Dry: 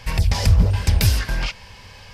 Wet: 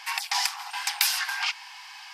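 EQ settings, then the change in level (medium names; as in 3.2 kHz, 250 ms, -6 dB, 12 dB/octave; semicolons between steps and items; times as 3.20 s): brick-wall FIR high-pass 710 Hz; +1.5 dB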